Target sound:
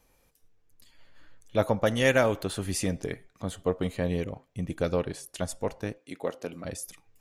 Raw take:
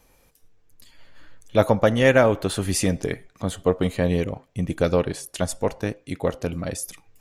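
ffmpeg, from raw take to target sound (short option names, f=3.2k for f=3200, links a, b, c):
-filter_complex "[0:a]asettb=1/sr,asplit=3[a][b][c];[a]atrim=end=1.864[d];[b]atrim=start=1.86:end=2.43,asetpts=PTS-STARTPTS,afade=t=in:d=0.004:c=qsin,afade=t=out:st=0.566:d=0.004:c=qsin,highshelf=f=3.1k:g=10[e];[c]atrim=start=2.426[f];[d][e]acrossfade=d=0.004:c1=hsin:c2=qsin[g];[g][f]acrossfade=d=0.004:c1=qsin:c2=hsin,asettb=1/sr,asplit=3[h][i][j];[h]atrim=end=5.984[k];[i]atrim=start=5.98:end=6.65,asetpts=PTS-STARTPTS,afade=t=in:d=0.004:c=qsin,afade=t=out:st=0.666:d=0.004:c=qsin,highpass=240[l];[j]atrim=start=6.646[m];[k][l]acrossfade=d=0.004:c1=hsin:c2=qsin[n];[n][m]acrossfade=d=0.004:c1=qsin:c2=hsin,volume=-7dB"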